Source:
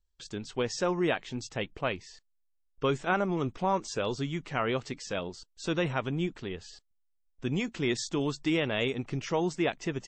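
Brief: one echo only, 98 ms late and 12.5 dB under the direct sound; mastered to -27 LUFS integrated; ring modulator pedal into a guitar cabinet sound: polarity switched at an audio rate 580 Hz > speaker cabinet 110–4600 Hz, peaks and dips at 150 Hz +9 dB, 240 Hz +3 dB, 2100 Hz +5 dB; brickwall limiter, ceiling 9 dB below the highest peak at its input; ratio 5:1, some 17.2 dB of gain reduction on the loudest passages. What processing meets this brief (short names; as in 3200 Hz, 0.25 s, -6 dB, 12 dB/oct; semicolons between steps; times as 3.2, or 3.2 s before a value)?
compressor 5:1, threshold -44 dBFS; limiter -38.5 dBFS; echo 98 ms -12.5 dB; polarity switched at an audio rate 580 Hz; speaker cabinet 110–4600 Hz, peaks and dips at 150 Hz +9 dB, 240 Hz +3 dB, 2100 Hz +5 dB; gain +21 dB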